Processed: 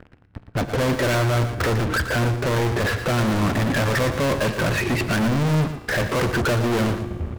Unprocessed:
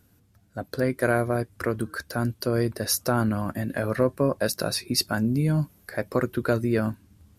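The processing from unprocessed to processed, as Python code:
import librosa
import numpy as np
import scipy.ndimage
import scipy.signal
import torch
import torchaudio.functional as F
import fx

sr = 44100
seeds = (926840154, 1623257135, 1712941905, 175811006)

p1 = scipy.signal.sosfilt(scipy.signal.butter(6, 2500.0, 'lowpass', fs=sr, output='sos'), x)
p2 = fx.low_shelf(p1, sr, hz=85.0, db=7.5)
p3 = fx.fuzz(p2, sr, gain_db=48.0, gate_db=-52.0)
p4 = p2 + (p3 * librosa.db_to_amplitude(-5.0))
p5 = fx.comb_fb(p4, sr, f0_hz=59.0, decay_s=1.6, harmonics='all', damping=0.0, mix_pct=50)
p6 = 10.0 ** (-25.0 / 20.0) * np.tanh(p5 / 10.0 ** (-25.0 / 20.0))
p7 = p6 + fx.echo_single(p6, sr, ms=116, db=-10.0, dry=0)
y = p7 * librosa.db_to_amplitude(6.0)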